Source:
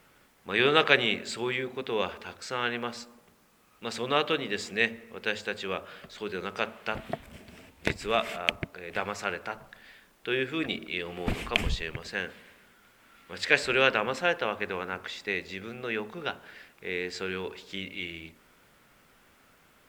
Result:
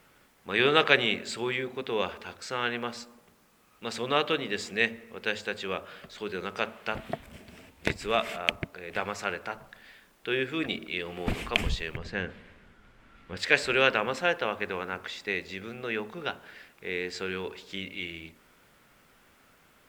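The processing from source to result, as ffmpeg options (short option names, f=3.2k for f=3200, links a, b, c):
-filter_complex "[0:a]asettb=1/sr,asplit=3[a][b][c];[a]atrim=end=11.974[d];[b]atrim=start=11.97:end=13.37,asetpts=PTS-STARTPTS,afade=t=in:d=0.004:c=qsin,afade=t=out:st=1.396:d=0.004:c=qsin,aemphasis=mode=reproduction:type=bsi[e];[c]atrim=start=13.366[f];[d][e]acrossfade=d=0.004:c1=hsin:c2=qsin[g];[g][f]acrossfade=d=0.004:c1=qsin:c2=hsin"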